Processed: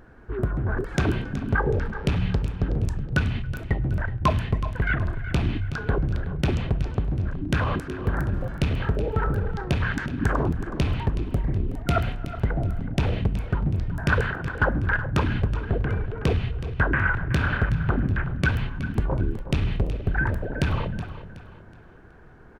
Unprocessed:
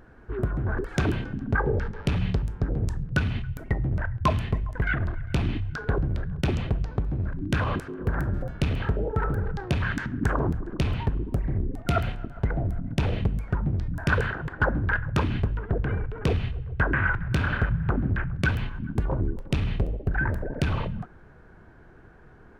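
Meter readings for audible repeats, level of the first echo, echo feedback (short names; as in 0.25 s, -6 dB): 3, -13.0 dB, 36%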